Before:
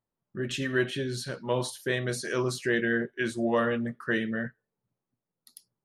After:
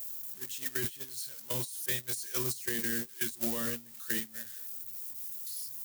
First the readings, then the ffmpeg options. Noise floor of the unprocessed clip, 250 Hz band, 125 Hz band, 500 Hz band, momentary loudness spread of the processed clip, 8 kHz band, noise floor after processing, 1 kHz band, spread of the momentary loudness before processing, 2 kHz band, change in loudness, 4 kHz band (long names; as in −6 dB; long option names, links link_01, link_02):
below −85 dBFS, −11.5 dB, −10.5 dB, −14.0 dB, 8 LU, +5.0 dB, −51 dBFS, −13.5 dB, 8 LU, −10.5 dB, −4.0 dB, −4.0 dB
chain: -filter_complex "[0:a]aeval=exprs='val(0)+0.5*0.0355*sgn(val(0))':channel_layout=same,acrossover=split=9100[link_01][link_02];[link_02]acompressor=threshold=-47dB:ratio=4:attack=1:release=60[link_03];[link_01][link_03]amix=inputs=2:normalize=0,agate=range=-32dB:threshold=-23dB:ratio=16:detection=peak,aemphasis=mode=production:type=50fm,alimiter=level_in=1dB:limit=-24dB:level=0:latency=1:release=45,volume=-1dB,acrossover=split=310[link_04][link_05];[link_05]acompressor=threshold=-44dB:ratio=6[link_06];[link_04][link_06]amix=inputs=2:normalize=0,crystalizer=i=8.5:c=0"